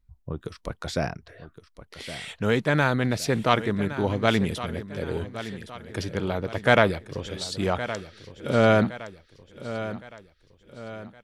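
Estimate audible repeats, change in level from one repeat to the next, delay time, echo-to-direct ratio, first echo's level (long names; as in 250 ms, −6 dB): 4, −7.0 dB, 1,115 ms, −12.0 dB, −13.0 dB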